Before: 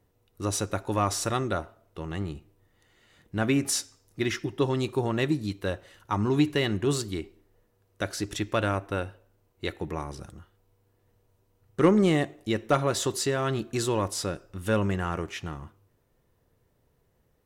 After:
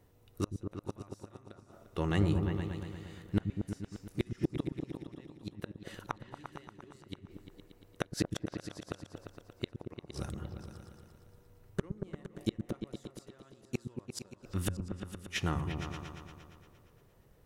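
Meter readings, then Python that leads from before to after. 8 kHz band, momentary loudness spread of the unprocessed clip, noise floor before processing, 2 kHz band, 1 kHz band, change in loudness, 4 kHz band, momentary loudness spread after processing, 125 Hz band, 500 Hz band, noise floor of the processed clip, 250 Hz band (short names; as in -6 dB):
-16.0 dB, 13 LU, -70 dBFS, -11.5 dB, -14.0 dB, -10.5 dB, -11.5 dB, 18 LU, -6.0 dB, -14.0 dB, -63 dBFS, -9.5 dB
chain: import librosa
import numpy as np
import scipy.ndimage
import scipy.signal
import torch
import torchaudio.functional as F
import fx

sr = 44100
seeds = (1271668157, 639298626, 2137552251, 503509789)

y = fx.gate_flip(x, sr, shuts_db=-21.0, range_db=-37)
y = fx.echo_opening(y, sr, ms=116, hz=200, octaves=2, feedback_pct=70, wet_db=-3)
y = y * 10.0 ** (3.5 / 20.0)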